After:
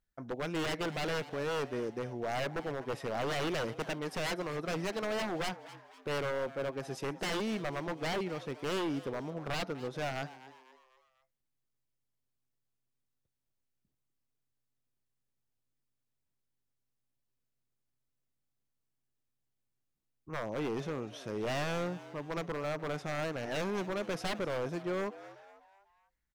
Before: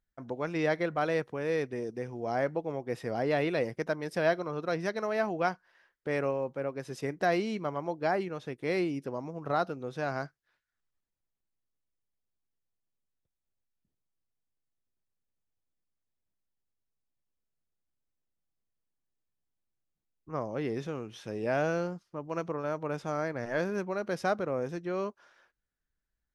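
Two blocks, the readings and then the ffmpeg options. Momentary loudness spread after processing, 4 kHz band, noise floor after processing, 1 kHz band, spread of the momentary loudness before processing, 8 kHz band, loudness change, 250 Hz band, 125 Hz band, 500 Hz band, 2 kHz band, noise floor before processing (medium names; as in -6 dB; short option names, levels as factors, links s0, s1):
6 LU, +6.0 dB, -83 dBFS, -4.0 dB, 9 LU, no reading, -3.5 dB, -3.0 dB, -2.0 dB, -4.5 dB, -2.5 dB, under -85 dBFS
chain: -filter_complex "[0:a]aeval=exprs='0.0355*(abs(mod(val(0)/0.0355+3,4)-2)-1)':c=same,asplit=5[s0][s1][s2][s3][s4];[s1]adelay=248,afreqshift=130,volume=0.15[s5];[s2]adelay=496,afreqshift=260,volume=0.0676[s6];[s3]adelay=744,afreqshift=390,volume=0.0302[s7];[s4]adelay=992,afreqshift=520,volume=0.0136[s8];[s0][s5][s6][s7][s8]amix=inputs=5:normalize=0"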